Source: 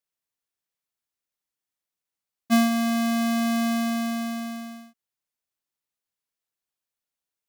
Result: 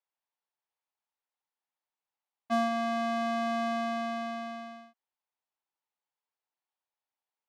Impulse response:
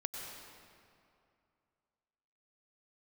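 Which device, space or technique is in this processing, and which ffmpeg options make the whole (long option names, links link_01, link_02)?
intercom: -af "highpass=330,lowpass=3600,equalizer=frequency=870:width_type=o:width=0.59:gain=10.5,asoftclip=type=tanh:threshold=-16dB,volume=-3.5dB"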